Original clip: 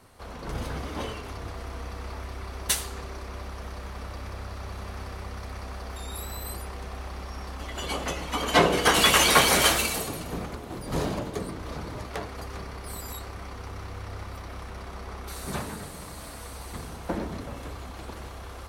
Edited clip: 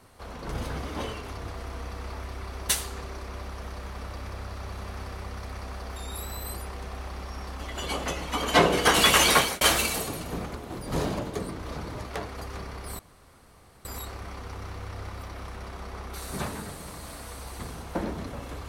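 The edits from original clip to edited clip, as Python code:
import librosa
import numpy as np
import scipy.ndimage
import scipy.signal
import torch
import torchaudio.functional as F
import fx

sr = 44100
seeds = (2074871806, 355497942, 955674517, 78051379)

y = fx.edit(x, sr, fx.fade_out_span(start_s=9.31, length_s=0.3),
    fx.insert_room_tone(at_s=12.99, length_s=0.86), tone=tone)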